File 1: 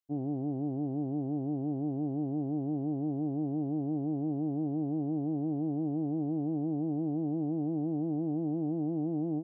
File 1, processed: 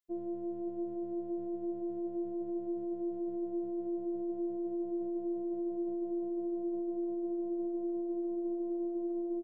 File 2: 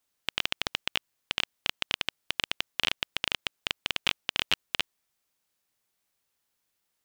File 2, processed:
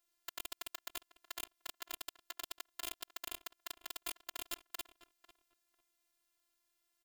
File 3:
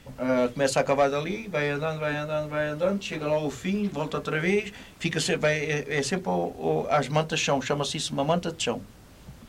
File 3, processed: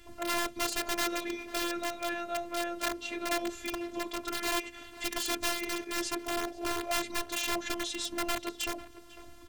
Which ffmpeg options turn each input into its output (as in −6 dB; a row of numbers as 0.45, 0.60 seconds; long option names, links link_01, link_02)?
-filter_complex "[0:a]asplit=2[link_01][link_02];[link_02]acompressor=threshold=-35dB:ratio=5,volume=-2dB[link_03];[link_01][link_03]amix=inputs=2:normalize=0,aeval=exprs='(mod(7.08*val(0)+1,2)-1)/7.08':channel_layout=same,asplit=2[link_04][link_05];[link_05]adelay=497,lowpass=frequency=2300:poles=1,volume=-15.5dB,asplit=2[link_06][link_07];[link_07]adelay=497,lowpass=frequency=2300:poles=1,volume=0.2[link_08];[link_04][link_06][link_08]amix=inputs=3:normalize=0,afftfilt=real='hypot(re,im)*cos(PI*b)':imag='0':win_size=512:overlap=0.75,volume=-4.5dB"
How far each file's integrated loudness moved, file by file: −3.5, −14.5, −6.5 LU